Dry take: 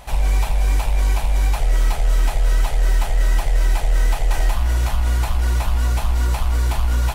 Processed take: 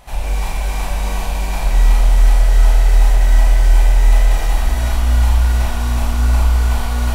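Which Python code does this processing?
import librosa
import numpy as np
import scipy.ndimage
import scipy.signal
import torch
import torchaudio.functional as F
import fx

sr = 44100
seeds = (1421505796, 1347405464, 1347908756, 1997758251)

y = x + 10.0 ** (-6.0 / 20.0) * np.pad(x, (int(271 * sr / 1000.0), 0))[:len(x)]
y = fx.rev_schroeder(y, sr, rt60_s=1.9, comb_ms=26, drr_db=-4.5)
y = y * 10.0 ** (-4.0 / 20.0)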